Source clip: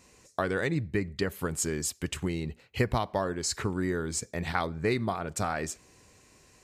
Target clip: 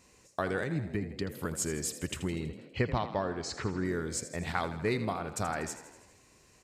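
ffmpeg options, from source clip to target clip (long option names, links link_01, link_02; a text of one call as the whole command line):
ffmpeg -i in.wav -filter_complex "[0:a]asettb=1/sr,asplit=3[link_01][link_02][link_03];[link_01]atrim=end=0.634[link_04];[link_02]atrim=start=0.63:end=1.45,asetpts=PTS-STARTPTS,afade=type=in:duration=0.004:curve=qsin,afade=type=out:start_time=0.816:duration=0.004:curve=qsin,acrossover=split=340[link_05][link_06];[link_06]acompressor=threshold=-36dB:ratio=6[link_07];[link_05][link_07]amix=inputs=2:normalize=0[link_08];[link_03]atrim=start=1.446[link_09];[link_04][link_08]acrossfade=duration=0.004:curve1=hsin:curve2=qsin[link_10];[link_10][link_09]acrossfade=duration=0.004:curve1=qsin:curve2=hsin,asettb=1/sr,asplit=3[link_11][link_12][link_13];[link_11]atrim=end=2.324[link_14];[link_12]atrim=start=2.32:end=3.85,asetpts=PTS-STARTPTS,afade=type=in:duration=0.004:curve=qsin,afade=type=out:start_time=1.526:duration=0.004:curve=qsin,lowpass=4700[link_15];[link_13]atrim=start=3.846[link_16];[link_14][link_15]acrossfade=duration=0.004:curve1=hsin:curve2=qsin[link_17];[link_17][link_16]acrossfade=duration=0.004:curve1=qsin:curve2=hsin,asplit=8[link_18][link_19][link_20][link_21][link_22][link_23][link_24][link_25];[link_19]adelay=81,afreqshift=39,volume=-12.5dB[link_26];[link_20]adelay=162,afreqshift=78,volume=-16.8dB[link_27];[link_21]adelay=243,afreqshift=117,volume=-21.1dB[link_28];[link_22]adelay=324,afreqshift=156,volume=-25.4dB[link_29];[link_23]adelay=405,afreqshift=195,volume=-29.7dB[link_30];[link_24]adelay=486,afreqshift=234,volume=-34dB[link_31];[link_25]adelay=567,afreqshift=273,volume=-38.3dB[link_32];[link_18][link_26][link_27][link_28][link_29][link_30][link_31][link_32]amix=inputs=8:normalize=0,volume=-3dB" out.wav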